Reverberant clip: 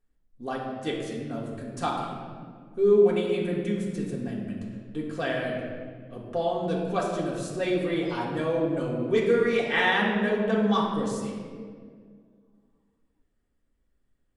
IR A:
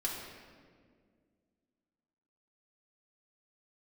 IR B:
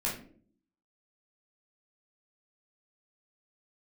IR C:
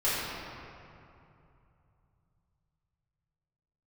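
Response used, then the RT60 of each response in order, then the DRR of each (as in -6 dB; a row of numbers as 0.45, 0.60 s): A; 1.9 s, not exponential, 2.7 s; -4.5, -5.5, -11.5 dB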